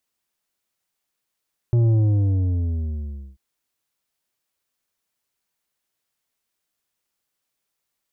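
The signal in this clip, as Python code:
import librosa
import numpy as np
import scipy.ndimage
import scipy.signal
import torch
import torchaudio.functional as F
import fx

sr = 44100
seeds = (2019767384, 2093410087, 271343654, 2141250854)

y = fx.sub_drop(sr, level_db=-15.0, start_hz=120.0, length_s=1.64, drive_db=8, fade_s=1.47, end_hz=65.0)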